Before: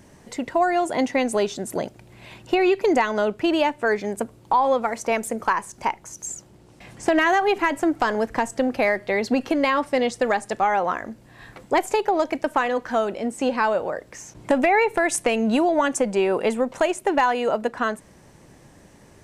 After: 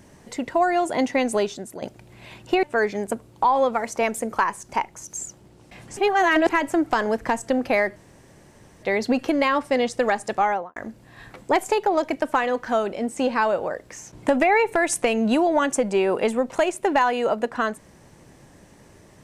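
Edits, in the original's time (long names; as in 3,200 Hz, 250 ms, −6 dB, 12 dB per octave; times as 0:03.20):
0:01.37–0:01.82: fade out, to −13 dB
0:02.63–0:03.72: remove
0:07.06–0:07.58: reverse
0:09.05: splice in room tone 0.87 s
0:10.66–0:10.98: fade out and dull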